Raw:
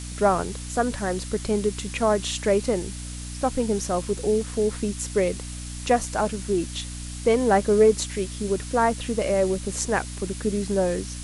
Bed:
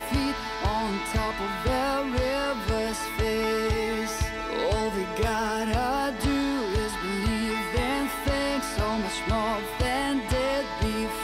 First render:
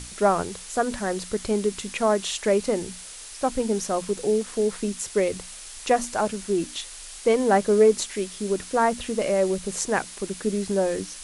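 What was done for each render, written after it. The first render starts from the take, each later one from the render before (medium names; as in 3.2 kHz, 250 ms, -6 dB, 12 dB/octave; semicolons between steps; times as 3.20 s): hum notches 60/120/180/240/300 Hz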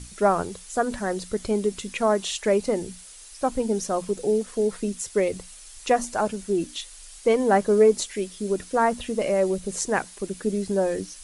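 noise reduction 8 dB, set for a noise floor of -41 dBFS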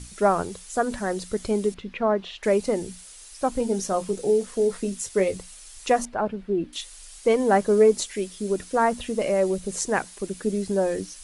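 1.74–2.43 s: distance through air 330 m; 3.53–5.36 s: doubling 21 ms -9 dB; 6.05–6.73 s: distance through air 400 m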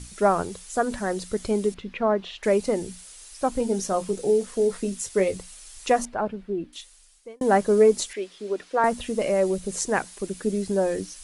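6.06–7.41 s: fade out; 8.13–8.84 s: three-band isolator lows -20 dB, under 300 Hz, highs -17 dB, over 4.7 kHz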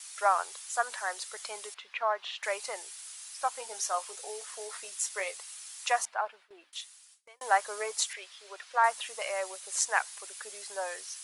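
high-pass 820 Hz 24 dB/octave; gate with hold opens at -47 dBFS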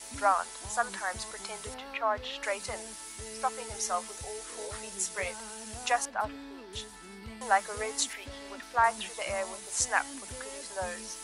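add bed -19 dB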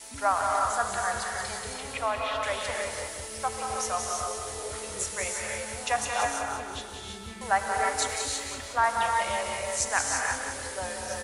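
feedback delay 182 ms, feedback 50%, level -7 dB; gated-style reverb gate 360 ms rising, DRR 0.5 dB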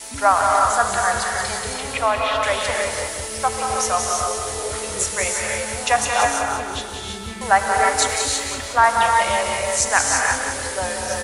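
trim +9.5 dB; peak limiter -2 dBFS, peak gain reduction 1.5 dB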